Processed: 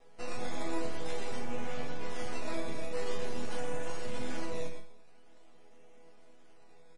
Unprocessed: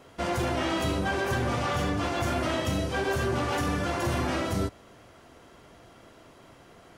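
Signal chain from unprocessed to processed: cabinet simulation 110–2700 Hz, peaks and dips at 150 Hz +7 dB, 220 Hz +4 dB, 360 Hz -6 dB, 590 Hz -5 dB, 870 Hz +8 dB, 1.5 kHz -6 dB; static phaser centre 440 Hz, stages 4; feedback delay 124 ms, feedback 15%, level -8.5 dB; decimation with a swept rate 10×, swing 100% 0.47 Hz; half-wave rectifier; 1.39–2.10 s: distance through air 56 m; chord resonator E3 major, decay 0.36 s; trim +16 dB; MP3 40 kbps 44.1 kHz

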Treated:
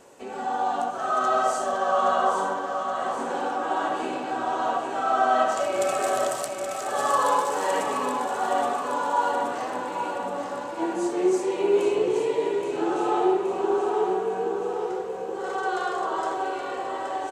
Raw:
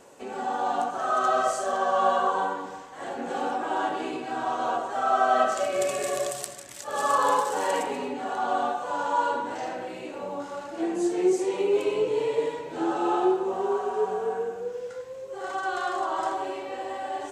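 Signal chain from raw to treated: feedback delay 823 ms, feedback 58%, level -7 dB; on a send at -10 dB: reverberation RT60 1.5 s, pre-delay 47 ms

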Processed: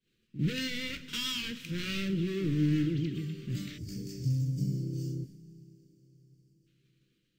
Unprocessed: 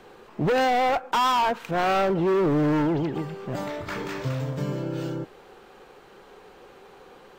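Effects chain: expander -37 dBFS; Chebyshev band-stop 210–2900 Hz, order 2; on a send: reverse echo 51 ms -13.5 dB; on the sum: two-slope reverb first 0.35 s, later 4.8 s, from -18 dB, DRR 7.5 dB; time-frequency box 3.78–6.67 s, 620–4400 Hz -19 dB; trim -2 dB

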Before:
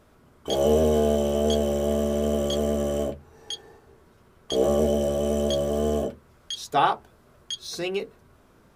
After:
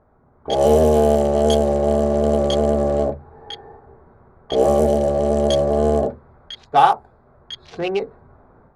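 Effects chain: local Wiener filter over 15 samples; graphic EQ with 31 bands 200 Hz -4 dB, 315 Hz -5 dB, 800 Hz +7 dB, 10 kHz +8 dB; level-controlled noise filter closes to 2.1 kHz, open at -17 dBFS; level rider gain up to 8 dB

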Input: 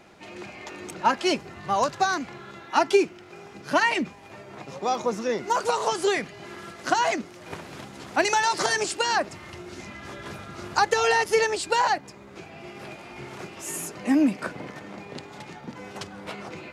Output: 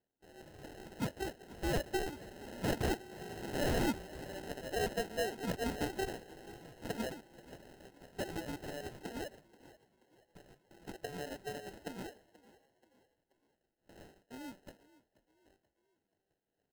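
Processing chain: Doppler pass-by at 3.66 s, 12 m/s, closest 4.7 m; gate with hold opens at -52 dBFS; high-pass 400 Hz 12 dB/octave; in parallel at -1.5 dB: compression, threshold -48 dBFS, peak gain reduction 28 dB; on the sum: one-sided clip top -16.5 dBFS; rotary cabinet horn 1 Hz, later 6 Hz, at 3.18 s; sample-and-hold 38×; wavefolder -30.5 dBFS; on a send: frequency-shifting echo 481 ms, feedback 45%, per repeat +30 Hz, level -20 dB; on the sum: trim +4 dB

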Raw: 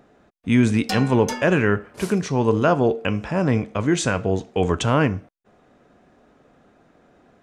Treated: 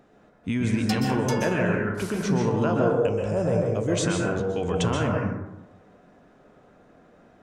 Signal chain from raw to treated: 2.81–3.92 s: ten-band graphic EQ 250 Hz -11 dB, 500 Hz +8 dB, 1 kHz -8 dB, 2 kHz -9 dB, 4 kHz -7 dB, 8 kHz +8 dB; peak limiter -15 dBFS, peak gain reduction 9 dB; plate-style reverb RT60 0.96 s, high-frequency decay 0.35×, pre-delay 115 ms, DRR -0.5 dB; trim -3 dB

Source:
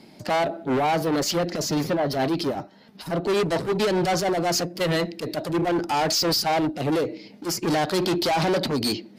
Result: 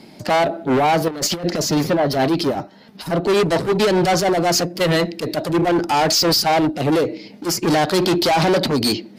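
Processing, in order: 1.08–1.51 s: compressor with a negative ratio -28 dBFS, ratio -0.5; trim +6 dB

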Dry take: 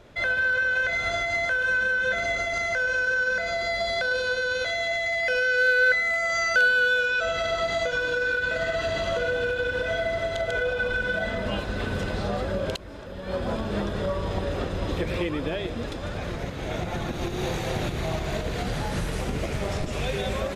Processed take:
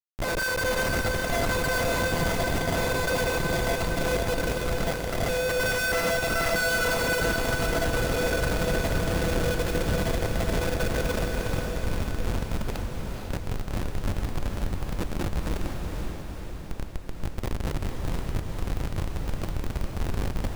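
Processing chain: bass shelf 150 Hz -5 dB; band-stop 3.5 kHz, Q 5.3; Schmitt trigger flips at -22 dBFS; on a send: echo that smears into a reverb 476 ms, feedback 60%, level -3 dB

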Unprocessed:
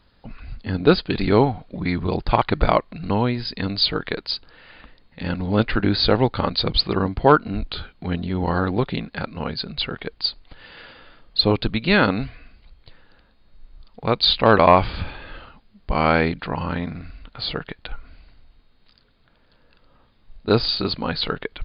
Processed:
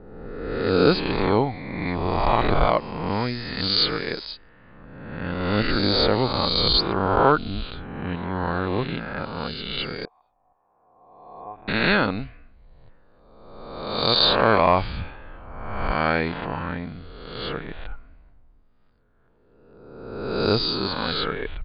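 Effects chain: reverse spectral sustain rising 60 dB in 1.51 s; level-controlled noise filter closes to 1.1 kHz, open at -9.5 dBFS; 10.05–11.68 s: cascade formant filter a; trim -6 dB

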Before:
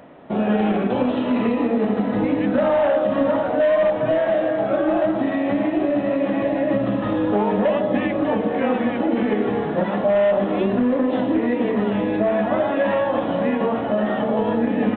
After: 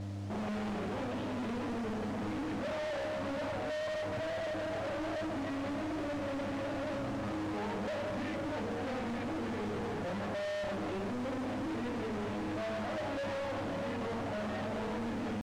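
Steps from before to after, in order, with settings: bass shelf 71 Hz +10.5 dB; hum notches 50/100/150/200/250/300/350/400/450/500 Hz; mains buzz 100 Hz, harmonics 3, -32 dBFS -5 dB/octave; tempo 0.97×; saturation -30 dBFS, distortion -6 dB; modulation noise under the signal 14 dB; distance through air 100 m; trim -5 dB

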